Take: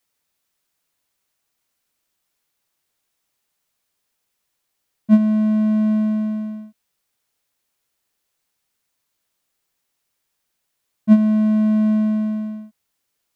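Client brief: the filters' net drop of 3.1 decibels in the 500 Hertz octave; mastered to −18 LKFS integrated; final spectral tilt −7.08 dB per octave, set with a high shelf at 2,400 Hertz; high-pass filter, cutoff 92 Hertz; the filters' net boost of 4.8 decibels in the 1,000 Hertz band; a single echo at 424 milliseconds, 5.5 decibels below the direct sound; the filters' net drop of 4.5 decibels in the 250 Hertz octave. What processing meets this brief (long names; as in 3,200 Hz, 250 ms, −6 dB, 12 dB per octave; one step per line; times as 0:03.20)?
high-pass filter 92 Hz
parametric band 250 Hz −4 dB
parametric band 500 Hz −8.5 dB
parametric band 1,000 Hz +8 dB
high-shelf EQ 2,400 Hz −4.5 dB
single-tap delay 424 ms −5.5 dB
level +2.5 dB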